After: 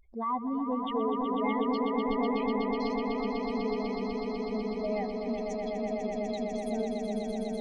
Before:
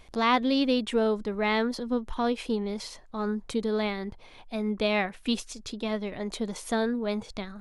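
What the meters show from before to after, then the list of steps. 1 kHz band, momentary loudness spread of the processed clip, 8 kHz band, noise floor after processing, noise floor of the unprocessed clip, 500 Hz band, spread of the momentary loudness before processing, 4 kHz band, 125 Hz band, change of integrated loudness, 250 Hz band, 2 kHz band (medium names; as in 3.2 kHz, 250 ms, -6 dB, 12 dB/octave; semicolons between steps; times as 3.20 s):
-1.5 dB, 5 LU, under -10 dB, -36 dBFS, -50 dBFS, -2.0 dB, 10 LU, -11.0 dB, no reading, -3.0 dB, -2.0 dB, -9.0 dB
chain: spectral contrast enhancement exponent 3.1; echo with a slow build-up 124 ms, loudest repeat 8, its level -6 dB; trim -7.5 dB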